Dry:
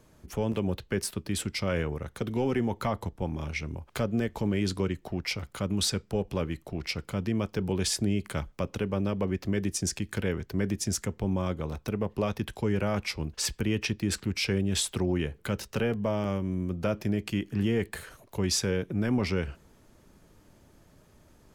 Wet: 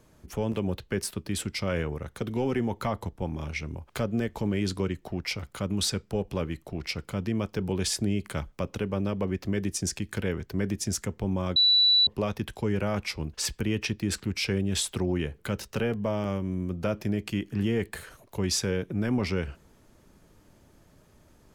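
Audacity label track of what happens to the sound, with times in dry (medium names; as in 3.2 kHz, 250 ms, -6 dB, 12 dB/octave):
11.560000	12.070000	bleep 3.95 kHz -17 dBFS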